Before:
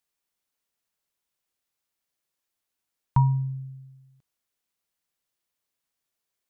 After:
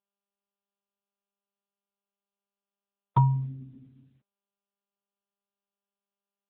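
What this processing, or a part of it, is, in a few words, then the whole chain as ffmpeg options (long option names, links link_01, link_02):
mobile call with aggressive noise cancelling: -af "highpass=frequency=140:poles=1,afftdn=noise_reduction=22:noise_floor=-50,volume=2.5dB" -ar 8000 -c:a libopencore_amrnb -b:a 10200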